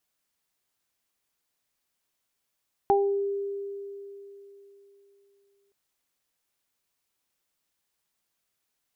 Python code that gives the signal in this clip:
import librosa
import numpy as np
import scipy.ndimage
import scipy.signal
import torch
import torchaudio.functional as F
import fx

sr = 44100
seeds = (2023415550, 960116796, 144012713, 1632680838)

y = fx.additive(sr, length_s=2.82, hz=399.0, level_db=-19.5, upper_db=(3,), decay_s=3.47, upper_decays_s=(0.37,))